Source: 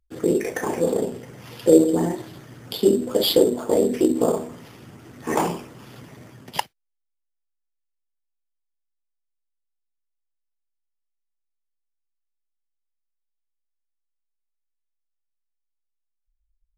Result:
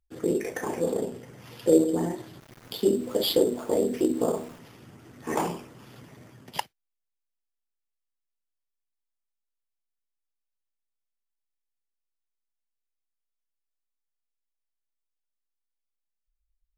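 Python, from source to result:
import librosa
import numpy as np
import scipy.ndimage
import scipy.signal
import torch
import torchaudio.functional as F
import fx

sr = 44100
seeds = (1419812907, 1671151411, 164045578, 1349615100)

y = fx.sample_gate(x, sr, floor_db=-39.5, at=(2.4, 4.59))
y = y * 10.0 ** (-5.5 / 20.0)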